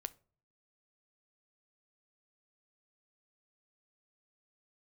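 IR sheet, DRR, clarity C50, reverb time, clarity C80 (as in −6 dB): 14.0 dB, 21.5 dB, non-exponential decay, 27.5 dB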